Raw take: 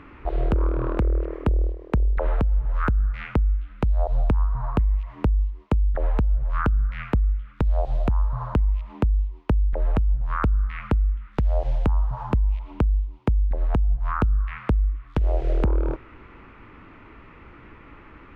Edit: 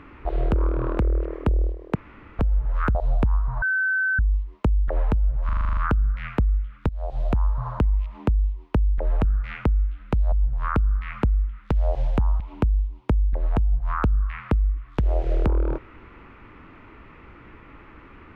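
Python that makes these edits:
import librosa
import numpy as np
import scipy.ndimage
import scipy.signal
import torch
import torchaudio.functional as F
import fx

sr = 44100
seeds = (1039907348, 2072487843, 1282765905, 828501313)

y = fx.edit(x, sr, fx.room_tone_fill(start_s=1.95, length_s=0.44),
    fx.move(start_s=2.95, length_s=1.07, to_s=10.0),
    fx.bleep(start_s=4.69, length_s=0.57, hz=1530.0, db=-19.5),
    fx.stutter(start_s=6.52, slice_s=0.04, count=9),
    fx.fade_in_from(start_s=7.64, length_s=0.41, floor_db=-16.5),
    fx.cut(start_s=12.08, length_s=0.5), tone=tone)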